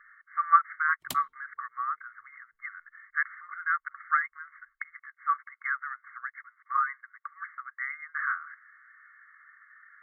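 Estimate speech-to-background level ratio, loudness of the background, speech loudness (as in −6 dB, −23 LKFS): 11.0 dB, −41.5 LKFS, −30.5 LKFS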